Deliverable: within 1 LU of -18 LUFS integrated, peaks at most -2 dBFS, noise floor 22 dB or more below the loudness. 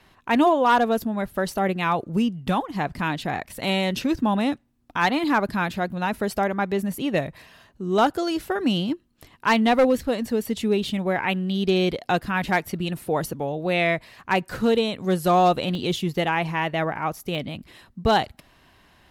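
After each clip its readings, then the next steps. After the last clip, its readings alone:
clipped samples 0.2%; clipping level -11.5 dBFS; dropouts 4; longest dropout 1.1 ms; loudness -23.5 LUFS; peak level -11.5 dBFS; loudness target -18.0 LUFS
-> clip repair -11.5 dBFS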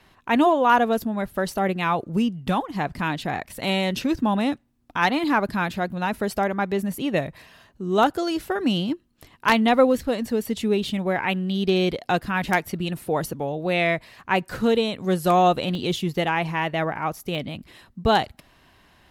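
clipped samples 0.0%; dropouts 4; longest dropout 1.1 ms
-> interpolate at 6.92/10.84/15.75/17.35 s, 1.1 ms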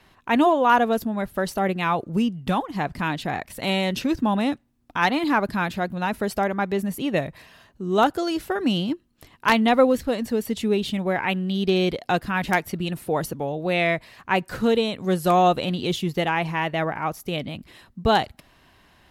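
dropouts 0; loudness -23.5 LUFS; peak level -2.5 dBFS; loudness target -18.0 LUFS
-> trim +5.5 dB; peak limiter -2 dBFS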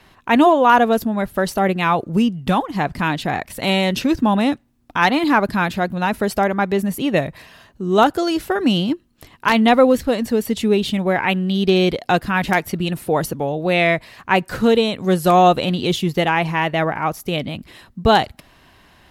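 loudness -18.0 LUFS; peak level -2.0 dBFS; noise floor -52 dBFS

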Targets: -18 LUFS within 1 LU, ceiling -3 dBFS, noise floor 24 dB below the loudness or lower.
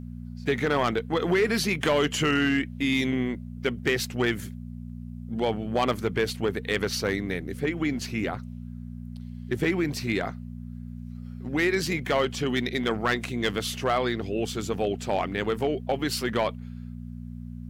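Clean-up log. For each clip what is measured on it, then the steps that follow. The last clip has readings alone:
clipped samples 0.5%; clipping level -16.5 dBFS; hum 60 Hz; highest harmonic 240 Hz; hum level -35 dBFS; loudness -27.0 LUFS; peak level -16.5 dBFS; loudness target -18.0 LUFS
-> clip repair -16.5 dBFS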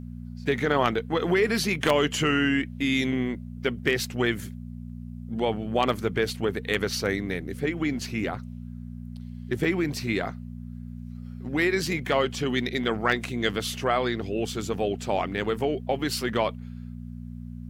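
clipped samples 0.0%; hum 60 Hz; highest harmonic 240 Hz; hum level -35 dBFS
-> de-hum 60 Hz, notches 4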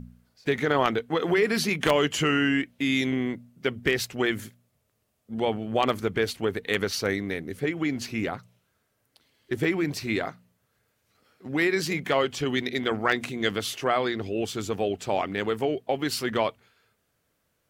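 hum not found; loudness -27.0 LUFS; peak level -7.0 dBFS; loudness target -18.0 LUFS
-> trim +9 dB; peak limiter -3 dBFS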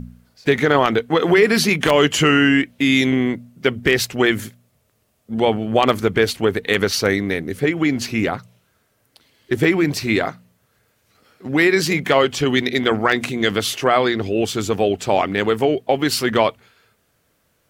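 loudness -18.0 LUFS; peak level -3.0 dBFS; noise floor -65 dBFS

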